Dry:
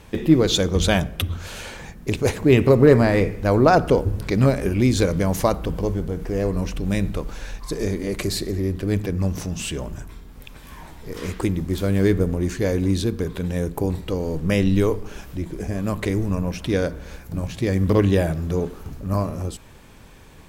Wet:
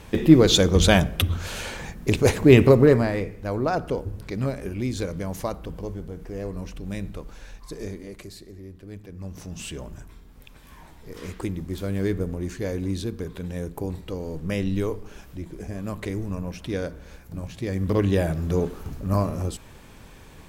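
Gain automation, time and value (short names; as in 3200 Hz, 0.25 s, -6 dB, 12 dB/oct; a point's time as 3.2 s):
2.61 s +2 dB
3.25 s -9.5 dB
7.87 s -9.5 dB
8.35 s -18 dB
9.04 s -18 dB
9.59 s -7 dB
17.66 s -7 dB
18.56 s 0 dB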